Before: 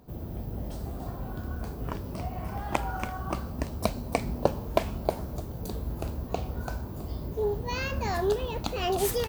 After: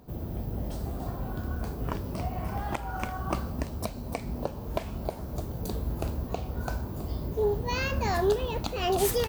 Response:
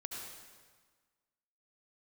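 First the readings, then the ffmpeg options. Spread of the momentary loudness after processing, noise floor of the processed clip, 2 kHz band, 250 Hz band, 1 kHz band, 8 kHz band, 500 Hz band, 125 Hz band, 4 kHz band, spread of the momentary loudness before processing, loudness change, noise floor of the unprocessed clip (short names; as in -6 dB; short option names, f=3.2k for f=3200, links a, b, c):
9 LU, -39 dBFS, +0.5 dB, +0.5 dB, -0.5 dB, +1.0 dB, 0.0 dB, +1.0 dB, +0.5 dB, 9 LU, +0.5 dB, -38 dBFS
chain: -af "alimiter=limit=-16dB:level=0:latency=1:release=321,volume=2dB"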